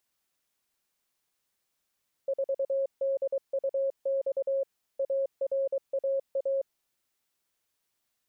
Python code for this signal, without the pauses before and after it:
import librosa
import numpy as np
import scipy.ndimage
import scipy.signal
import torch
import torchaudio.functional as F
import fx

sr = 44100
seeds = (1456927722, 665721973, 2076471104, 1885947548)

y = fx.morse(sr, text='4DUX ARAA', wpm=23, hz=544.0, level_db=-25.0)